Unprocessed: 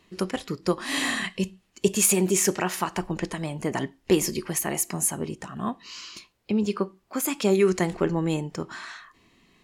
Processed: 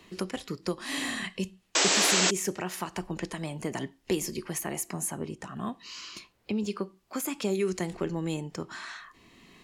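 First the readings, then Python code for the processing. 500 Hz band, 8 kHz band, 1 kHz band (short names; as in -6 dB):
-7.0 dB, -3.5 dB, -3.5 dB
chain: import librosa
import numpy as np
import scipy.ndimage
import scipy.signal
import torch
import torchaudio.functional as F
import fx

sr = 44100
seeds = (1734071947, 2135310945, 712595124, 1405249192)

y = fx.spec_paint(x, sr, seeds[0], shape='noise', start_s=1.75, length_s=0.56, low_hz=270.0, high_hz=8100.0, level_db=-13.0)
y = fx.dynamic_eq(y, sr, hz=1200.0, q=0.72, threshold_db=-31.0, ratio=4.0, max_db=-4)
y = fx.band_squash(y, sr, depth_pct=40)
y = y * librosa.db_to_amplitude(-6.0)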